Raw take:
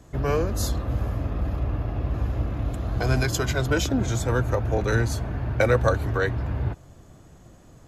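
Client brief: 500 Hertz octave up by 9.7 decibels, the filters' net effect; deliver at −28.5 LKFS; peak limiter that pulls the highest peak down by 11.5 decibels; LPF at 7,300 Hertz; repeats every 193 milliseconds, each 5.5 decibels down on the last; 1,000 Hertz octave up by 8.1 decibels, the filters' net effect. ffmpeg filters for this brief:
ffmpeg -i in.wav -af "lowpass=7300,equalizer=frequency=500:width_type=o:gain=9,equalizer=frequency=1000:width_type=o:gain=8,alimiter=limit=-11.5dB:level=0:latency=1,aecho=1:1:193|386|579|772|965|1158|1351:0.531|0.281|0.149|0.079|0.0419|0.0222|0.0118,volume=-6dB" out.wav

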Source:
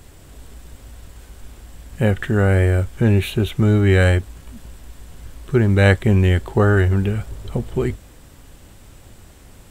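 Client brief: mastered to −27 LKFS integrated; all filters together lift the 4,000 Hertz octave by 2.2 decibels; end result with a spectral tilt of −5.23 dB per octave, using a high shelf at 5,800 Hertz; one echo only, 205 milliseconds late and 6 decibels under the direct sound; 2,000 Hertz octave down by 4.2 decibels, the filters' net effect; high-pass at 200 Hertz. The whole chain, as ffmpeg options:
ffmpeg -i in.wav -af "highpass=200,equalizer=frequency=2000:width_type=o:gain=-6.5,equalizer=frequency=4000:width_type=o:gain=8,highshelf=frequency=5800:gain=-7,aecho=1:1:205:0.501,volume=-5.5dB" out.wav

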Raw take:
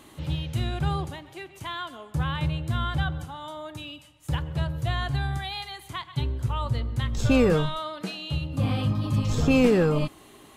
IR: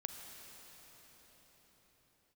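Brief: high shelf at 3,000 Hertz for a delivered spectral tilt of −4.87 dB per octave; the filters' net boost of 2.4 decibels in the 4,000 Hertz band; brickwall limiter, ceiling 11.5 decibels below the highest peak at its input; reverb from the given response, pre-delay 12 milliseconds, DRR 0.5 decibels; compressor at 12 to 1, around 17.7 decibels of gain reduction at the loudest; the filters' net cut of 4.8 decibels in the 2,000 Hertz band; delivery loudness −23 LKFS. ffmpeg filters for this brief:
-filter_complex "[0:a]equalizer=frequency=2000:width_type=o:gain=-8.5,highshelf=frequency=3000:gain=-4,equalizer=frequency=4000:width_type=o:gain=9,acompressor=threshold=-34dB:ratio=12,alimiter=level_in=11.5dB:limit=-24dB:level=0:latency=1,volume=-11.5dB,asplit=2[link_01][link_02];[1:a]atrim=start_sample=2205,adelay=12[link_03];[link_02][link_03]afir=irnorm=-1:irlink=0,volume=1dB[link_04];[link_01][link_04]amix=inputs=2:normalize=0,volume=18.5dB"

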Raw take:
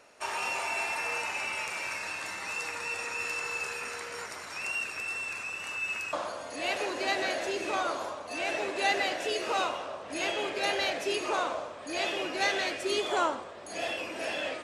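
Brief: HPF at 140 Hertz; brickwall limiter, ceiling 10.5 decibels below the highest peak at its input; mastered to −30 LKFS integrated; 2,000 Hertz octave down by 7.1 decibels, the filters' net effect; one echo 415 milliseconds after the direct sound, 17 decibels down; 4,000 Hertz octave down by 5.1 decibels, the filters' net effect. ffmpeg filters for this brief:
ffmpeg -i in.wav -af "highpass=140,equalizer=frequency=2000:width_type=o:gain=-8.5,equalizer=frequency=4000:width_type=o:gain=-3.5,alimiter=level_in=2.5dB:limit=-24dB:level=0:latency=1,volume=-2.5dB,aecho=1:1:415:0.141,volume=7dB" out.wav

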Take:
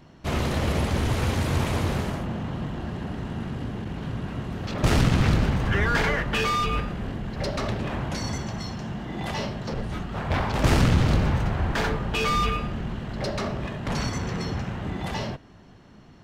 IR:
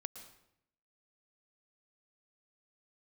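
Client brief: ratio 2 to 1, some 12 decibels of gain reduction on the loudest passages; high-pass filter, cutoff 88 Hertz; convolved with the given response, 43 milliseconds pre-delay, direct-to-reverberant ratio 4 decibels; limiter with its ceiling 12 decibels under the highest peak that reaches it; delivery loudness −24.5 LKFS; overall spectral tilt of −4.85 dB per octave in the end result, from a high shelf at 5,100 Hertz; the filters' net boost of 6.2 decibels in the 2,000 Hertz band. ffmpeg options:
-filter_complex "[0:a]highpass=88,equalizer=frequency=2000:width_type=o:gain=6.5,highshelf=frequency=5100:gain=8,acompressor=threshold=-39dB:ratio=2,alimiter=level_in=6.5dB:limit=-24dB:level=0:latency=1,volume=-6.5dB,asplit=2[link_01][link_02];[1:a]atrim=start_sample=2205,adelay=43[link_03];[link_02][link_03]afir=irnorm=-1:irlink=0,volume=-1dB[link_04];[link_01][link_04]amix=inputs=2:normalize=0,volume=13dB"

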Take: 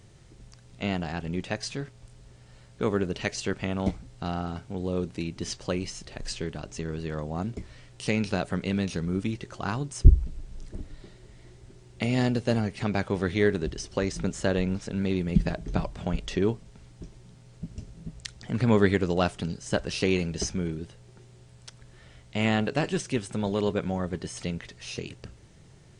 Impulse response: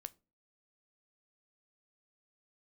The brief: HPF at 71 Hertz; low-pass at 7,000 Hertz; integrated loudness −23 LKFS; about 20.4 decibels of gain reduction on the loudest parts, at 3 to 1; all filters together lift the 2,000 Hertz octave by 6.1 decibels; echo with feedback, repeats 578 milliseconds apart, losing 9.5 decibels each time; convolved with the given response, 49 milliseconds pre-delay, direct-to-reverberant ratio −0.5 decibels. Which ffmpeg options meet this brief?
-filter_complex "[0:a]highpass=71,lowpass=7000,equalizer=frequency=2000:width_type=o:gain=7.5,acompressor=threshold=-43dB:ratio=3,aecho=1:1:578|1156|1734|2312:0.335|0.111|0.0365|0.012,asplit=2[link_01][link_02];[1:a]atrim=start_sample=2205,adelay=49[link_03];[link_02][link_03]afir=irnorm=-1:irlink=0,volume=5.5dB[link_04];[link_01][link_04]amix=inputs=2:normalize=0,volume=17.5dB"

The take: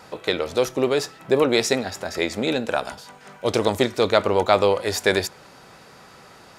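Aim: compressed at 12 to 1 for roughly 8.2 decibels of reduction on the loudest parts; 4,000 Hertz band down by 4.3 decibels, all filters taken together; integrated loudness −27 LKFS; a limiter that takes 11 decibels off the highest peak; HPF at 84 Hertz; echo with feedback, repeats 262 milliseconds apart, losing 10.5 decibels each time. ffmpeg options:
ffmpeg -i in.wav -af "highpass=84,equalizer=frequency=4000:width_type=o:gain=-5,acompressor=threshold=-21dB:ratio=12,alimiter=limit=-19.5dB:level=0:latency=1,aecho=1:1:262|524|786:0.299|0.0896|0.0269,volume=5dB" out.wav

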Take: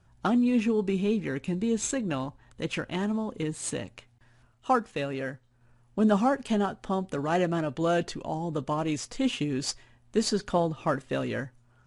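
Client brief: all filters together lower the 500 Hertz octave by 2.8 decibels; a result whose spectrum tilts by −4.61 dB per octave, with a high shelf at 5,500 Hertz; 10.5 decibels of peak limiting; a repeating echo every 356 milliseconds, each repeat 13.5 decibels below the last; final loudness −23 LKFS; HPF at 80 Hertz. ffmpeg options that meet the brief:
ffmpeg -i in.wav -af "highpass=80,equalizer=frequency=500:width_type=o:gain=-3.5,highshelf=frequency=5500:gain=6.5,alimiter=limit=-23.5dB:level=0:latency=1,aecho=1:1:356|712:0.211|0.0444,volume=10dB" out.wav

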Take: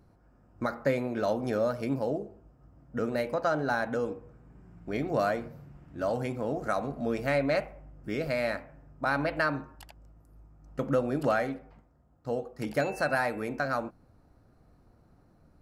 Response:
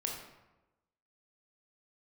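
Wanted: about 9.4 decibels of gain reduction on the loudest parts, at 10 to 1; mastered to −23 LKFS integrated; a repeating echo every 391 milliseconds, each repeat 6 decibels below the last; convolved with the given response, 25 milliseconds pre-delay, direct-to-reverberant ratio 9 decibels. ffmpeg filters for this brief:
-filter_complex "[0:a]acompressor=threshold=-31dB:ratio=10,aecho=1:1:391|782|1173|1564|1955|2346:0.501|0.251|0.125|0.0626|0.0313|0.0157,asplit=2[link_01][link_02];[1:a]atrim=start_sample=2205,adelay=25[link_03];[link_02][link_03]afir=irnorm=-1:irlink=0,volume=-11dB[link_04];[link_01][link_04]amix=inputs=2:normalize=0,volume=13.5dB"

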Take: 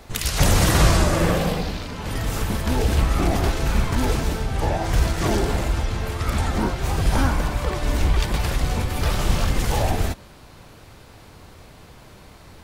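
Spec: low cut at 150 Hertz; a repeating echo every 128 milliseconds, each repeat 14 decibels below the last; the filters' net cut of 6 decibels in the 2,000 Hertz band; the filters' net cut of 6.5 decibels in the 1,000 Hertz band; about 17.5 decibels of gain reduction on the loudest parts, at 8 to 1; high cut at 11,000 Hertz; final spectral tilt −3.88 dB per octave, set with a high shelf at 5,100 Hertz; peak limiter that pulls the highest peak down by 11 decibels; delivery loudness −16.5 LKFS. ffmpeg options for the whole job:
ffmpeg -i in.wav -af "highpass=150,lowpass=11000,equalizer=frequency=1000:width_type=o:gain=-7.5,equalizer=frequency=2000:width_type=o:gain=-6.5,highshelf=frequency=5100:gain=7,acompressor=threshold=-36dB:ratio=8,alimiter=level_in=6dB:limit=-24dB:level=0:latency=1,volume=-6dB,aecho=1:1:128|256:0.2|0.0399,volume=24dB" out.wav

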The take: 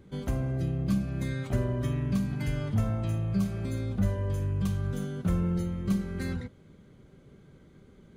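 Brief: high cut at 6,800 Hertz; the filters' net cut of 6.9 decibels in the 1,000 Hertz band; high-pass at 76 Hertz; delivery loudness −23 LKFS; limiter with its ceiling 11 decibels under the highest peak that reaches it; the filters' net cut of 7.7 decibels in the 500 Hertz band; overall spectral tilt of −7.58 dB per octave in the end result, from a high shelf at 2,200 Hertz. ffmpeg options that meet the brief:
ffmpeg -i in.wav -af "highpass=76,lowpass=6800,equalizer=frequency=500:width_type=o:gain=-9,equalizer=frequency=1000:width_type=o:gain=-8,highshelf=frequency=2200:gain=4.5,volume=13dB,alimiter=limit=-15dB:level=0:latency=1" out.wav

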